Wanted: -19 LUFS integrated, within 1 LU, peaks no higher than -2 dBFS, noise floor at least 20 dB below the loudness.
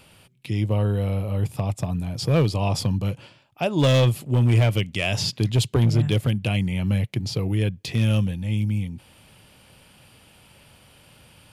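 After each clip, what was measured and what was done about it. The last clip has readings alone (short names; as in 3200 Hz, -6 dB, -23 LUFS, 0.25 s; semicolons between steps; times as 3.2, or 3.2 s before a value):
clipped 1.1%; flat tops at -13.0 dBFS; loudness -23.0 LUFS; peak -13.0 dBFS; loudness target -19.0 LUFS
-> clip repair -13 dBFS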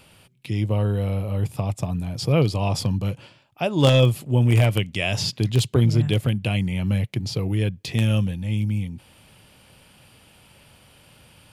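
clipped 0.0%; loudness -22.5 LUFS; peak -4.0 dBFS; loudness target -19.0 LUFS
-> gain +3.5 dB; limiter -2 dBFS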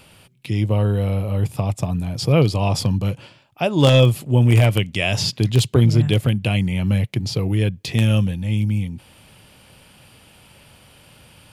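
loudness -19.0 LUFS; peak -2.0 dBFS; noise floor -51 dBFS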